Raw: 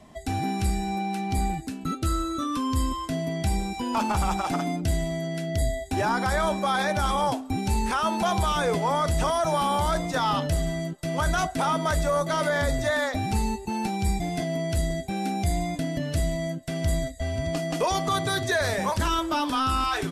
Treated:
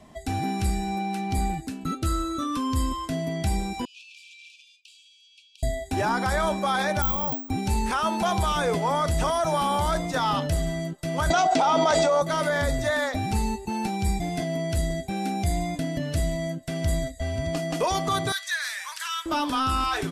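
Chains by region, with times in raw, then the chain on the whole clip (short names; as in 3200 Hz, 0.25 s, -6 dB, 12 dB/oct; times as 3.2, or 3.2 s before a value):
3.85–5.63 self-modulated delay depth 0.093 ms + brick-wall FIR high-pass 2300 Hz + tape spacing loss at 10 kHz 24 dB
7.02–7.49 LPF 2100 Hz 6 dB/oct + bell 820 Hz -7 dB 3 oct + careless resampling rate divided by 2×, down filtered, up zero stuff
11.3–12.22 speaker cabinet 300–6800 Hz, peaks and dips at 790 Hz +7 dB, 1100 Hz -3 dB, 1700 Hz -8 dB + fast leveller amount 100%
18.32–19.26 HPF 1400 Hz 24 dB/oct + core saturation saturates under 1200 Hz
whole clip: dry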